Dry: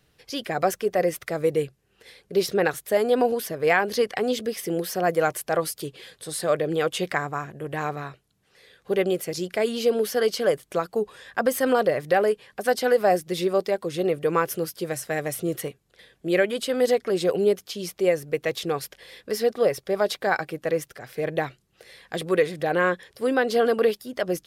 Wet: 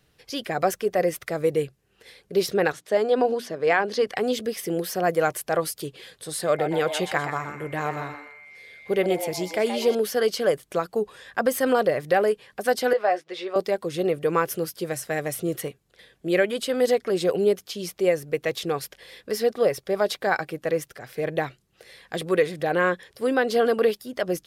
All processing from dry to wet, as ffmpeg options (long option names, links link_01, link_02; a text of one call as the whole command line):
ffmpeg -i in.wav -filter_complex "[0:a]asettb=1/sr,asplit=3[link_01][link_02][link_03];[link_01]atrim=end=2.724[link_04];[link_02]atrim=start=2.72:end=4.07,asetpts=PTS-STARTPTS,afade=type=in:duration=0.004:curve=qsin,afade=type=out:start_time=1.346:duration=0.004:curve=qsin,highpass=170,lowpass=6100,equalizer=frequency=2300:width=1.7:gain=-2.5,bandreject=frequency=60:width_type=h:width=6,bandreject=frequency=120:width_type=h:width=6,bandreject=frequency=180:width_type=h:width=6,bandreject=frequency=240:width_type=h:width=6,bandreject=frequency=300:width_type=h:width=6[link_05];[link_03]atrim=start=4.066[link_06];[link_04][link_05]acrossfade=duration=0.004:curve1=hsin:curve2=qsin[link_07];[link_07][link_06]acrossfade=duration=0.004:curve1=qsin:curve2=hsin,asettb=1/sr,asplit=3[link_08][link_09][link_10];[link_08]atrim=end=6.464[link_11];[link_09]atrim=start=6.46:end=9.95,asetpts=PTS-STARTPTS,afade=type=in:duration=0.004:curve=qsin,afade=type=out:start_time=3.486:duration=0.004:curve=qsin,aeval=exprs='val(0)+0.00562*sin(2*PI*2100*n/s)':channel_layout=same,asplit=5[link_12][link_13][link_14][link_15][link_16];[link_13]adelay=125,afreqshift=150,volume=-8.5dB[link_17];[link_14]adelay=250,afreqshift=300,volume=-17.4dB[link_18];[link_15]adelay=375,afreqshift=450,volume=-26.2dB[link_19];[link_16]adelay=500,afreqshift=600,volume=-35.1dB[link_20];[link_12][link_17][link_18][link_19][link_20]amix=inputs=5:normalize=0,atrim=end_sample=153909[link_21];[link_10]atrim=start=9.946[link_22];[link_11][link_21]acrossfade=duration=0.004:curve1=hsin:curve2=qsin[link_23];[link_23][link_22]acrossfade=duration=0.004:curve1=qsin:curve2=hsin,asettb=1/sr,asplit=3[link_24][link_25][link_26];[link_24]atrim=end=12.934[link_27];[link_25]atrim=start=12.93:end=13.56,asetpts=PTS-STARTPTS,afade=type=in:duration=0.004:curve=qsin,afade=type=out:start_time=0.626:duration=0.004:curve=qsin,highpass=600,lowpass=3300,asplit=2[link_28][link_29];[link_29]adelay=14,volume=-10dB[link_30];[link_28][link_30]amix=inputs=2:normalize=0,atrim=end_sample=27783[link_31];[link_26]atrim=start=13.556[link_32];[link_27][link_31]acrossfade=duration=0.004:curve1=hsin:curve2=qsin[link_33];[link_33][link_32]acrossfade=duration=0.004:curve1=qsin:curve2=hsin" out.wav